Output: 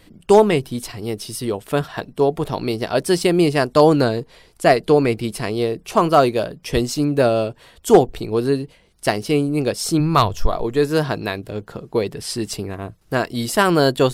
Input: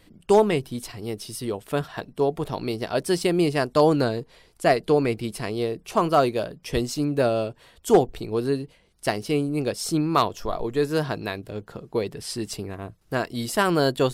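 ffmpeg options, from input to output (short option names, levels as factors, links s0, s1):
-filter_complex "[0:a]asplit=3[s0][s1][s2];[s0]afade=t=out:st=9.99:d=0.02[s3];[s1]asubboost=boost=6:cutoff=110,afade=t=in:st=9.99:d=0.02,afade=t=out:st=10.47:d=0.02[s4];[s2]afade=t=in:st=10.47:d=0.02[s5];[s3][s4][s5]amix=inputs=3:normalize=0,volume=1.88"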